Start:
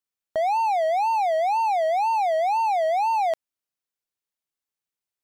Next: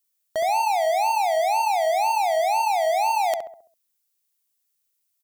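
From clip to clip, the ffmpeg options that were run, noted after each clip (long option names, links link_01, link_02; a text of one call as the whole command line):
ffmpeg -i in.wav -filter_complex "[0:a]crystalizer=i=5:c=0,asplit=2[link_01][link_02];[link_02]adelay=67,lowpass=frequency=1200:poles=1,volume=-4.5dB,asplit=2[link_03][link_04];[link_04]adelay=67,lowpass=frequency=1200:poles=1,volume=0.48,asplit=2[link_05][link_06];[link_06]adelay=67,lowpass=frequency=1200:poles=1,volume=0.48,asplit=2[link_07][link_08];[link_08]adelay=67,lowpass=frequency=1200:poles=1,volume=0.48,asplit=2[link_09][link_10];[link_10]adelay=67,lowpass=frequency=1200:poles=1,volume=0.48,asplit=2[link_11][link_12];[link_12]adelay=67,lowpass=frequency=1200:poles=1,volume=0.48[link_13];[link_03][link_05][link_07][link_09][link_11][link_13]amix=inputs=6:normalize=0[link_14];[link_01][link_14]amix=inputs=2:normalize=0,volume=-2dB" out.wav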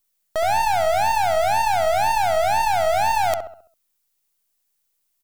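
ffmpeg -i in.wav -af "aeval=exprs='if(lt(val(0),0),0.447*val(0),val(0))':channel_layout=same,volume=4.5dB" out.wav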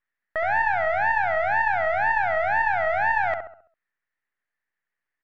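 ffmpeg -i in.wav -af "lowpass=frequency=1800:width_type=q:width=7,volume=-6.5dB" out.wav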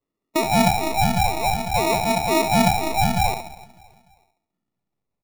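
ffmpeg -i in.wav -af "afftfilt=real='re*pow(10,14/40*sin(2*PI*(1.9*log(max(b,1)*sr/1024/100)/log(2)-(-0.51)*(pts-256)/sr)))':imag='im*pow(10,14/40*sin(2*PI*(1.9*log(max(b,1)*sr/1024/100)/log(2)-(-0.51)*(pts-256)/sr)))':win_size=1024:overlap=0.75,aecho=1:1:300|600|900:0.0708|0.0319|0.0143,acrusher=samples=28:mix=1:aa=0.000001" out.wav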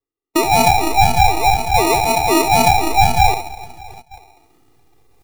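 ffmpeg -i in.wav -af "aecho=1:1:2.5:0.93,agate=range=-15dB:threshold=-49dB:ratio=16:detection=peak,areverse,acompressor=mode=upward:threshold=-29dB:ratio=2.5,areverse,volume=3.5dB" out.wav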